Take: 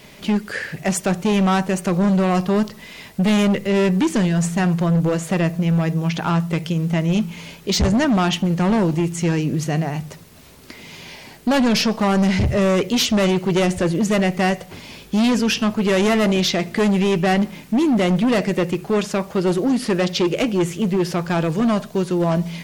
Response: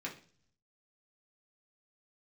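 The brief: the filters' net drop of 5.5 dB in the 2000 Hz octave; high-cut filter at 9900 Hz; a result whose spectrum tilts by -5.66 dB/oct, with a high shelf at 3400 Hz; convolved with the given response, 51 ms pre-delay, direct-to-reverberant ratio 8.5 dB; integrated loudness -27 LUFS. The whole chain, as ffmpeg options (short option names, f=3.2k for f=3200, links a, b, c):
-filter_complex "[0:a]lowpass=9.9k,equalizer=f=2k:t=o:g=-9,highshelf=f=3.4k:g=5.5,asplit=2[a][b];[1:a]atrim=start_sample=2205,adelay=51[c];[b][c]afir=irnorm=-1:irlink=0,volume=-9.5dB[d];[a][d]amix=inputs=2:normalize=0,volume=-8.5dB"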